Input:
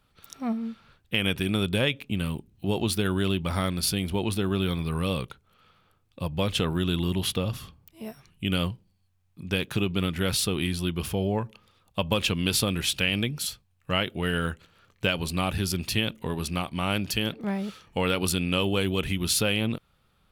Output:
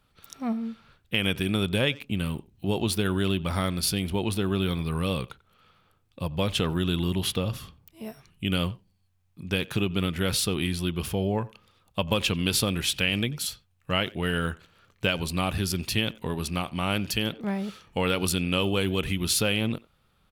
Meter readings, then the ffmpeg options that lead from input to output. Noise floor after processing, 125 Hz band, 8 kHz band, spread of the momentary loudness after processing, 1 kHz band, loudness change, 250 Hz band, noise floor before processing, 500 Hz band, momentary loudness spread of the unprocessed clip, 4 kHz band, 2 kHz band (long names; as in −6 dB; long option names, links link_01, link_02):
−68 dBFS, 0.0 dB, 0.0 dB, 9 LU, 0.0 dB, 0.0 dB, 0.0 dB, −68 dBFS, 0.0 dB, 9 LU, 0.0 dB, 0.0 dB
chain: -filter_complex "[0:a]asplit=2[link_01][link_02];[link_02]adelay=90,highpass=300,lowpass=3400,asoftclip=type=hard:threshold=-18dB,volume=-21dB[link_03];[link_01][link_03]amix=inputs=2:normalize=0"